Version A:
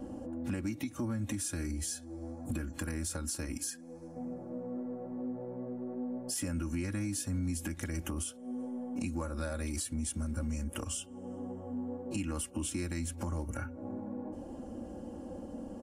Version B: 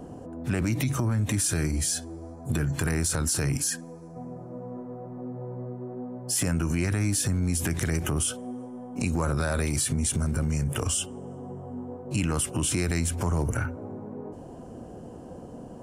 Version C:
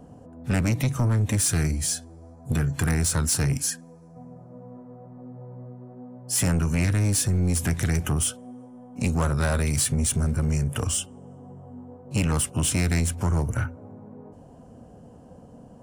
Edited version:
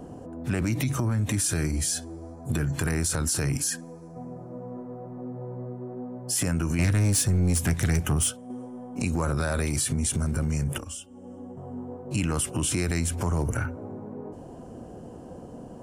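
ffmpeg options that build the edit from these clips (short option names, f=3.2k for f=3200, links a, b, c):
-filter_complex "[1:a]asplit=3[a][b][c];[a]atrim=end=6.792[d];[2:a]atrim=start=6.788:end=8.502[e];[b]atrim=start=8.498:end=10.782[f];[0:a]atrim=start=10.778:end=11.572[g];[c]atrim=start=11.568[h];[d][e]acrossfade=d=0.004:c1=hsin:c2=hsin[i];[i][f]acrossfade=d=0.004:c1=hsin:c2=hsin[j];[j][g]acrossfade=d=0.004:c1=hsin:c2=hsin[k];[k][h]acrossfade=d=0.004:c1=hsin:c2=hsin"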